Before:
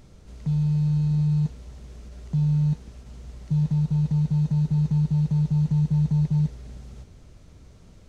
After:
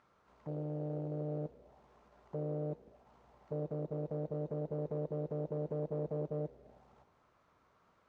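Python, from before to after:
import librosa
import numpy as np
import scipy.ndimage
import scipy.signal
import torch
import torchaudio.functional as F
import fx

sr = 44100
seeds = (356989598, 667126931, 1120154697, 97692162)

y = fx.tube_stage(x, sr, drive_db=21.0, bias=0.7)
y = 10.0 ** (-22.5 / 20.0) * (np.abs((y / 10.0 ** (-22.5 / 20.0) + 3.0) % 4.0 - 2.0) - 1.0)
y = fx.auto_wah(y, sr, base_hz=530.0, top_hz=1300.0, q=2.4, full_db=-32.5, direction='down')
y = F.gain(torch.from_numpy(y), 3.0).numpy()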